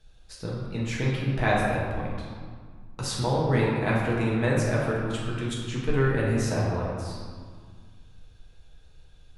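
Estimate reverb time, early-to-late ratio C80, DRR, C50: 1.8 s, 1.5 dB, −5.5 dB, −0.5 dB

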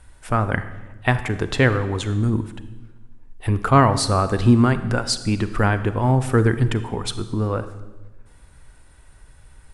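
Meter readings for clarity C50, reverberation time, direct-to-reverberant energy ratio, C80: 12.5 dB, 1.2 s, 11.5 dB, 14.0 dB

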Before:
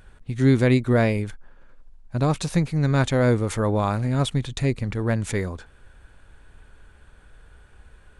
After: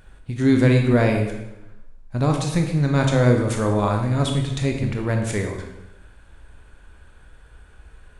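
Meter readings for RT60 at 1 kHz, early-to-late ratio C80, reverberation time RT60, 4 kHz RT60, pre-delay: 0.90 s, 7.0 dB, 0.95 s, 0.80 s, 18 ms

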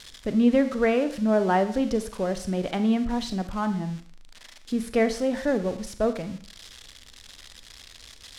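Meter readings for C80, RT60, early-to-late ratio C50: 15.5 dB, 0.50 s, 12.0 dB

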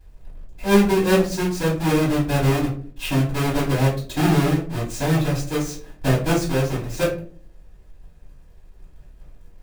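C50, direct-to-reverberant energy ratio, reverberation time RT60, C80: 7.5 dB, −8.5 dB, 0.50 s, 12.5 dB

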